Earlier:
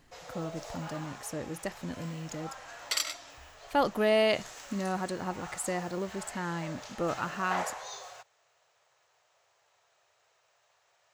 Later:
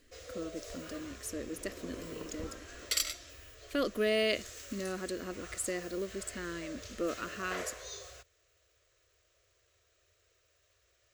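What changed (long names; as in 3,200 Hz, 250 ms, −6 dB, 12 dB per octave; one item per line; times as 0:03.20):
first sound: remove meter weighting curve A
second sound: unmuted
master: add phaser with its sweep stopped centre 350 Hz, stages 4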